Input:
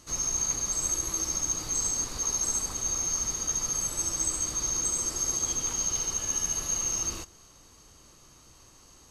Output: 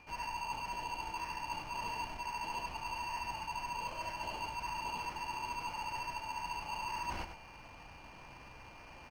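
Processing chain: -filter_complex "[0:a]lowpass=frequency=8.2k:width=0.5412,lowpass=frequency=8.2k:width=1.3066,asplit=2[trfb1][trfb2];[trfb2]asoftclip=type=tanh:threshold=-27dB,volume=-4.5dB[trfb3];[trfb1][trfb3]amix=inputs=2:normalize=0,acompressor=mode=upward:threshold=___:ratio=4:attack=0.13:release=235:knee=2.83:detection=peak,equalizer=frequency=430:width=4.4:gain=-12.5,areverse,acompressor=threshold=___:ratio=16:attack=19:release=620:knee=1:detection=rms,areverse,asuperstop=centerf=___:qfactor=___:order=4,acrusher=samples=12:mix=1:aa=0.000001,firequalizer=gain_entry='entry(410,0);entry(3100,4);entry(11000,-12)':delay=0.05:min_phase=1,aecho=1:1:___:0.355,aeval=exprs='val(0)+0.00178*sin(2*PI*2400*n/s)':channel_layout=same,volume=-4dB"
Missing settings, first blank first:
-41dB, -33dB, 1200, 0.56, 100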